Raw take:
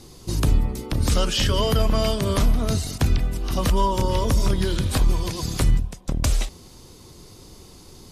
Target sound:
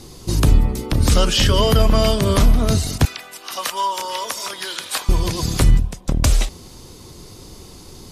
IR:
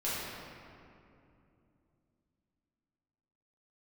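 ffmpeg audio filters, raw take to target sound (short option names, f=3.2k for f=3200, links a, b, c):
-filter_complex "[0:a]asettb=1/sr,asplit=3[a][b][c];[a]atrim=end=3.054[d];[b]atrim=start=3.05:end=5.09,asetpts=PTS-STARTPTS,afade=t=in:d=0.004:c=qsin,afade=t=out:st=2.036:d=0.004:c=qsin,highpass=930[e];[c]atrim=start=5.086[f];[d][e]acrossfade=d=0.004:c1=hsin:c2=qsin[g];[g][f]acrossfade=d=0.004:c1=qsin:c2=hsin,volume=5.5dB"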